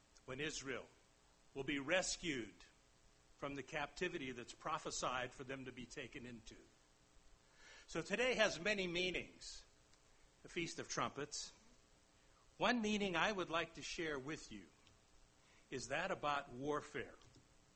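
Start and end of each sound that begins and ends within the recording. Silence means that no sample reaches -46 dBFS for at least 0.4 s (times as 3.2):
1.56–2.46
3.43–6.49
7.91–9.57
10.45–11.47
12.6–14.59
15.72–17.04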